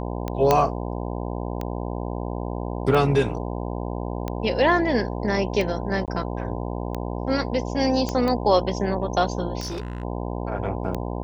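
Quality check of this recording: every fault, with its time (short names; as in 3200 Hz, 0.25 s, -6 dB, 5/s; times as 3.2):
buzz 60 Hz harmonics 17 -29 dBFS
tick 45 rpm -15 dBFS
0.51 pop -4 dBFS
6.06–6.08 gap 18 ms
8.09 pop -13 dBFS
9.6–10.03 clipped -26.5 dBFS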